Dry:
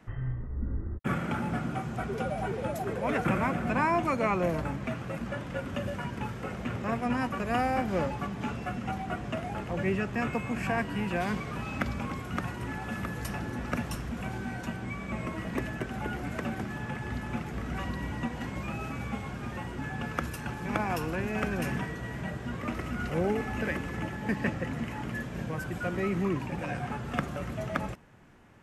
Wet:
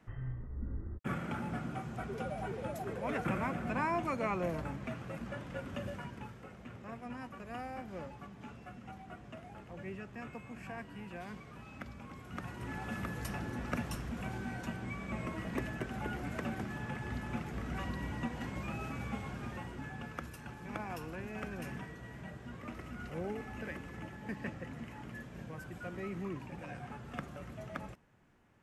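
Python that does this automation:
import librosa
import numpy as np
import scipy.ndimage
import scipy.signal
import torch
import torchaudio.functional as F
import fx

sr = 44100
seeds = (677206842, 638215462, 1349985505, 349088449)

y = fx.gain(x, sr, db=fx.line((5.9, -7.0), (6.51, -15.0), (12.02, -15.0), (12.79, -4.5), (19.39, -4.5), (20.24, -11.0)))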